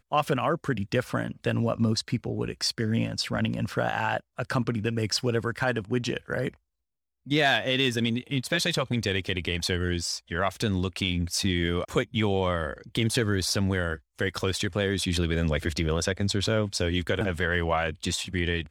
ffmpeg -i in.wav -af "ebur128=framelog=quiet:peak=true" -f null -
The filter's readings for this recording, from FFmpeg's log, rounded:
Integrated loudness:
  I:         -27.3 LUFS
  Threshold: -37.4 LUFS
Loudness range:
  LRA:         1.6 LU
  Threshold: -47.4 LUFS
  LRA low:   -28.3 LUFS
  LRA high:  -26.6 LUFS
True peak:
  Peak:      -11.5 dBFS